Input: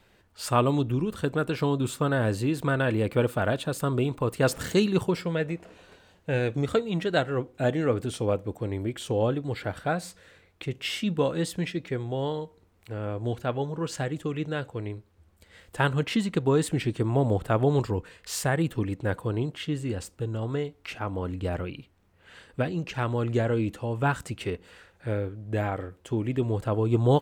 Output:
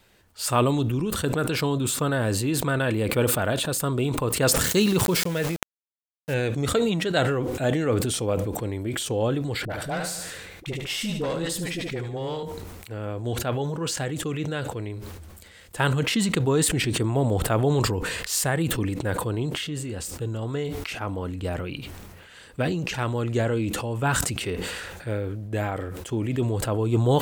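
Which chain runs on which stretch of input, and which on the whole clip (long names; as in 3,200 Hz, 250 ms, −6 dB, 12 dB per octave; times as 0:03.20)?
0:04.63–0:06.34: notch filter 720 Hz, Q 22 + centre clipping without the shift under −37.5 dBFS
0:09.65–0:12.43: tube saturation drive 22 dB, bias 0.5 + all-pass dispersion highs, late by 48 ms, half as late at 550 Hz + repeating echo 74 ms, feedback 42%, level −10 dB
0:19.57–0:20.12: downward compressor 2 to 1, threshold −31 dBFS + double-tracking delay 27 ms −13 dB
whole clip: high-shelf EQ 4,400 Hz +9.5 dB; level that may fall only so fast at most 29 dB per second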